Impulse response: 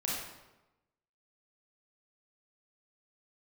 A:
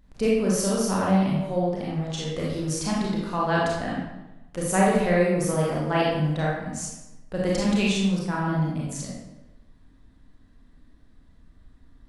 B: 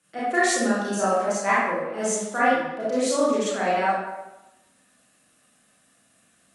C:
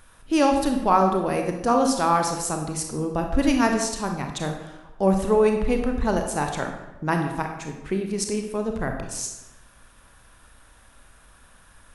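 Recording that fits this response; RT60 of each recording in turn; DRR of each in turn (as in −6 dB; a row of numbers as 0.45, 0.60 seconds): A; 1.0, 1.0, 1.0 seconds; −5.0, −9.5, 3.5 decibels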